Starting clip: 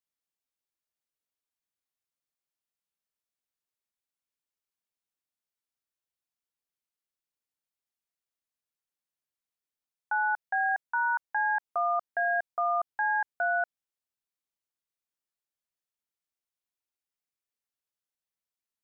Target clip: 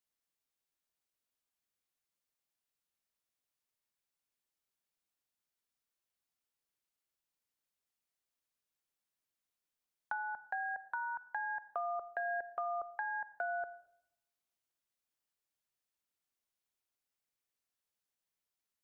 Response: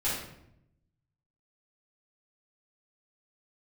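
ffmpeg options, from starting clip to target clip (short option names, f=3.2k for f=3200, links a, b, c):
-filter_complex "[0:a]acrossover=split=420[a][b];[b]acompressor=threshold=-39dB:ratio=6[c];[a][c]amix=inputs=2:normalize=0,asplit=2[d][e];[1:a]atrim=start_sample=2205,adelay=37[f];[e][f]afir=irnorm=-1:irlink=0,volume=-23dB[g];[d][g]amix=inputs=2:normalize=0,volume=1dB"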